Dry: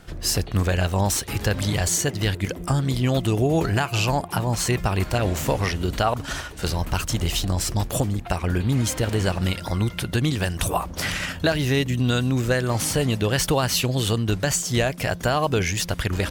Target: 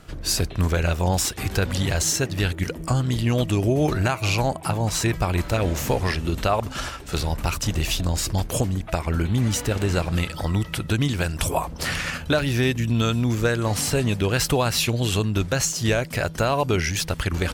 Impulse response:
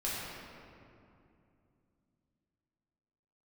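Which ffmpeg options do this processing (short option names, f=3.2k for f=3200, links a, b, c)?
-af "asetrate=41013,aresample=44100"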